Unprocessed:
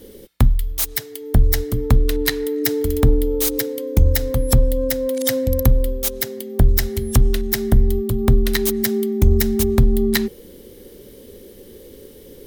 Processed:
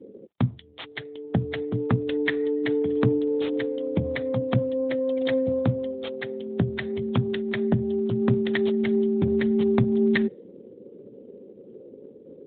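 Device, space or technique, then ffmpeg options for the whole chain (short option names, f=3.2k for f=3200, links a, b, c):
mobile call with aggressive noise cancelling: -af "highpass=f=120:w=0.5412,highpass=f=120:w=1.3066,afftdn=nr=32:nf=-44,volume=-1.5dB" -ar 8000 -c:a libopencore_amrnb -b:a 12200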